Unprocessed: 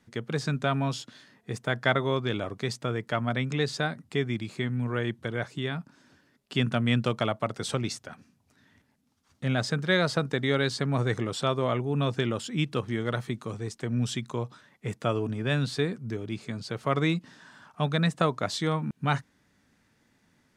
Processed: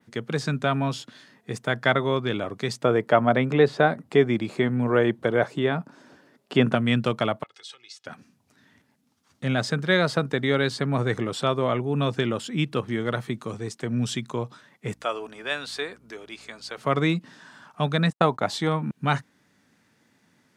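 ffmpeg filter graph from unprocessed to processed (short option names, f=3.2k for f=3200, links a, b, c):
-filter_complex "[0:a]asettb=1/sr,asplit=3[a][b][c];[a]atrim=end=2.844[d];[b]atrim=start=2.84:end=6.75,asetpts=PTS-STARTPTS,afade=t=in:d=0.004:c=qsin,afade=t=out:st=3.906:d=0.004:c=qsin,acrossover=split=3500[e][f];[f]acompressor=threshold=-46dB:ratio=4:attack=1:release=60[g];[e][g]amix=inputs=2:normalize=0,equalizer=f=580:w=0.58:g=9.5[h];[c]atrim=start=6.746[i];[d][h]acrossfade=d=0.004:c1=hsin:c2=qsin[j];[j][i]acrossfade=d=0.004:c1=qsin:c2=hsin,asettb=1/sr,asplit=3[k][l][m];[k]atrim=end=7.434[n];[l]atrim=start=7.43:end=8.06,asetpts=PTS-STARTPTS,afade=t=in:d=0.004:c=qsin,afade=t=out:st=0.626:d=0.004:c=qsin,acompressor=threshold=-40dB:ratio=5:attack=3.2:release=140:knee=1:detection=peak,bandpass=f=3.6k:t=q:w=1.2,aecho=1:1:2.4:0.66,atrim=end_sample=27783[o];[m]atrim=start=8.056[p];[n][o]acrossfade=d=0.004:c1=hsin:c2=qsin[q];[q][p]acrossfade=d=0.004:c1=qsin:c2=hsin,asettb=1/sr,asplit=3[r][s][t];[r]atrim=end=14.944[u];[s]atrim=start=14.94:end=16.78,asetpts=PTS-STARTPTS,afade=t=in:d=0.004:c=qsin,afade=t=out:st=1.836:d=0.004:c=qsin,highpass=620,aeval=exprs='val(0)+0.00141*(sin(2*PI*60*n/s)+sin(2*PI*2*60*n/s)/2+sin(2*PI*3*60*n/s)/3+sin(2*PI*4*60*n/s)/4+sin(2*PI*5*60*n/s)/5)':c=same[v];[t]atrim=start=16.776[w];[u][v]acrossfade=d=0.004:c1=hsin:c2=qsin[x];[x][w]acrossfade=d=0.004:c1=qsin:c2=hsin,asettb=1/sr,asplit=3[y][z][aa];[y]atrim=end=18.104[ab];[z]atrim=start=18.1:end=18.69,asetpts=PTS-STARTPTS,afade=t=in:d=0.004:c=qsin,afade=t=out:st=0.586:d=0.004:c=qsin,equalizer=f=820:t=o:w=0.34:g=8.5,agate=range=-57dB:threshold=-40dB:ratio=16:release=100:detection=peak[ac];[aa]atrim=start=18.686[ad];[ab][ac]acrossfade=d=0.004:c1=hsin:c2=qsin[ae];[ae][ad]acrossfade=d=0.004:c1=qsin:c2=hsin,highpass=120,adynamicequalizer=threshold=0.00316:dfrequency=6300:dqfactor=0.88:tfrequency=6300:tqfactor=0.88:attack=5:release=100:ratio=0.375:range=2.5:mode=cutabove:tftype=bell,volume=3.5dB"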